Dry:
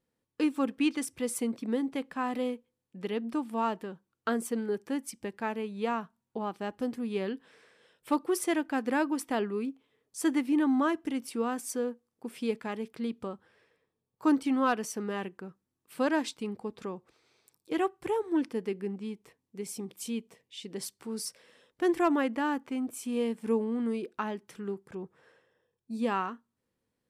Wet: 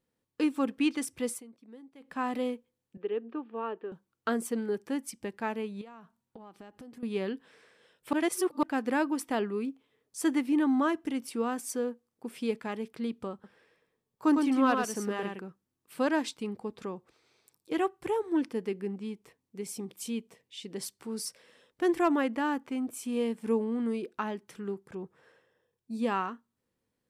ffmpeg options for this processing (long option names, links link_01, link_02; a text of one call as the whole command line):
ffmpeg -i in.wav -filter_complex "[0:a]asettb=1/sr,asplit=3[link_01][link_02][link_03];[link_01]atrim=end=2.974[link_04];[link_02]atrim=start=2.97:end=3.92,asetpts=PTS-STARTPTS,afade=type=in:duration=0.004:curve=qsin,afade=type=out:start_time=0.946:duration=0.004:curve=qsin,highpass=400,equalizer=frequency=410:width_type=q:width=4:gain=7,equalizer=frequency=650:width_type=q:width=4:gain=-8,equalizer=frequency=950:width_type=q:width=4:gain=-8,equalizer=frequency=1400:width_type=q:width=4:gain=-4,equalizer=frequency=2100:width_type=q:width=4:gain=-10,lowpass=frequency=2500:width=0.5412,lowpass=frequency=2500:width=1.3066[link_05];[link_03]atrim=start=3.916[link_06];[link_04][link_05]acrossfade=duration=0.004:curve1=hsin:curve2=qsin[link_07];[link_07][link_06]acrossfade=duration=0.004:curve1=qsin:curve2=hsin,asettb=1/sr,asplit=3[link_08][link_09][link_10];[link_08]atrim=end=5.814[link_11];[link_09]atrim=start=5.81:end=7.03,asetpts=PTS-STARTPTS,afade=type=in:duration=0.004:curve=qsin,afade=type=out:start_time=1.216:duration=0.004:curve=qsin,acompressor=threshold=-44dB:ratio=16:attack=3.2:release=140:knee=1:detection=peak[link_12];[link_10]atrim=start=7.026[link_13];[link_11][link_12]acrossfade=duration=0.004:curve1=hsin:curve2=qsin[link_14];[link_14][link_13]acrossfade=duration=0.004:curve1=qsin:curve2=hsin,asettb=1/sr,asplit=3[link_15][link_16][link_17];[link_15]atrim=end=13.334[link_18];[link_16]atrim=start=13.33:end=15.45,asetpts=PTS-STARTPTS,afade=type=in:duration=0.004:curve=qsin,afade=type=out:start_time=2.116:duration=0.004:curve=qsin,aecho=1:1:107:0.596,atrim=end_sample=93492[link_19];[link_17]atrim=start=15.446[link_20];[link_18][link_19]acrossfade=duration=0.004:curve1=hsin:curve2=qsin[link_21];[link_21][link_20]acrossfade=duration=0.004:curve1=qsin:curve2=hsin,asplit=5[link_22][link_23][link_24][link_25][link_26];[link_22]atrim=end=1.43,asetpts=PTS-STARTPTS,afade=type=out:start_time=1.29:duration=0.14:silence=0.1[link_27];[link_23]atrim=start=1.43:end=2,asetpts=PTS-STARTPTS,volume=-20dB[link_28];[link_24]atrim=start=2:end=8.132,asetpts=PTS-STARTPTS,afade=type=in:duration=0.14:silence=0.1[link_29];[link_25]atrim=start=8.128:end=8.632,asetpts=PTS-STARTPTS,areverse[link_30];[link_26]atrim=start=8.628[link_31];[link_27][link_28][link_29]concat=n=3:v=0:a=1[link_32];[link_32][link_30]acrossfade=duration=0.004:curve1=hsin:curve2=hsin[link_33];[link_33][link_31]acrossfade=duration=0.004:curve1=hsin:curve2=hsin" out.wav